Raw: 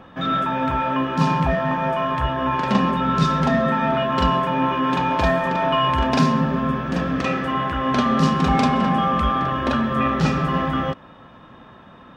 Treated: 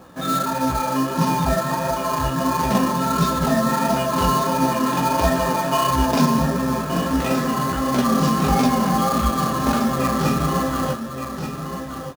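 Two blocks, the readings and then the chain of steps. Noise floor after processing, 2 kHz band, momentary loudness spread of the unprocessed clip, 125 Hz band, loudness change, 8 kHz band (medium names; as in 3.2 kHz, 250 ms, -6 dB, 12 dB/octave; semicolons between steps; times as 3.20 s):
-30 dBFS, -2.5 dB, 4 LU, -0.5 dB, 0.0 dB, no reading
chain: chorus 1.5 Hz, delay 15.5 ms, depth 6.5 ms; tilt shelf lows +3 dB, about 910 Hz; delay 1174 ms -8 dB; in parallel at -8.5 dB: sample-rate reducer 5.5 kHz, jitter 20%; on the sum: tone controls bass -4 dB, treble +9 dB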